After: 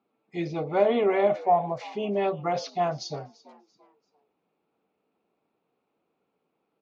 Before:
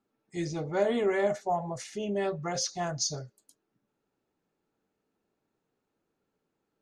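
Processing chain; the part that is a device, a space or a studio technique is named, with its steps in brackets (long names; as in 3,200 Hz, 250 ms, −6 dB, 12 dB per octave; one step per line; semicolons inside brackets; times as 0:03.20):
frequency-shifting delay pedal into a guitar cabinet (echo with shifted repeats 340 ms, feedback 35%, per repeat +100 Hz, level −20.5 dB; loudspeaker in its box 100–4,000 Hz, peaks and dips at 110 Hz −9 dB, 480 Hz +3 dB, 720 Hz +6 dB, 1,100 Hz +5 dB, 1,700 Hz −7 dB, 2,400 Hz +6 dB)
level +2.5 dB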